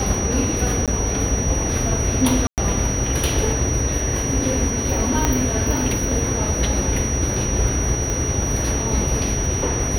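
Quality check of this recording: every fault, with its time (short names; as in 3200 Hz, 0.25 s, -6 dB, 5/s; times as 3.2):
crackle 54/s -28 dBFS
tone 5800 Hz -25 dBFS
0.86–0.88 gap 17 ms
2.47–2.58 gap 0.108 s
5.25 pop -3 dBFS
8.1 pop -11 dBFS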